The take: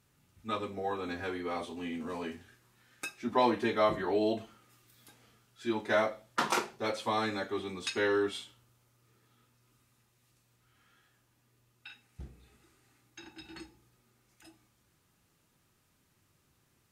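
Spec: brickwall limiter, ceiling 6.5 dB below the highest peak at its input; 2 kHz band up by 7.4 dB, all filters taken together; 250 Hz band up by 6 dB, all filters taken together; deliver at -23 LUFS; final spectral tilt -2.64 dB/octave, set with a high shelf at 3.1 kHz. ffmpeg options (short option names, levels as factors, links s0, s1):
-af "equalizer=f=250:t=o:g=7.5,equalizer=f=2000:t=o:g=8,highshelf=f=3100:g=4,volume=2.37,alimiter=limit=0.335:level=0:latency=1"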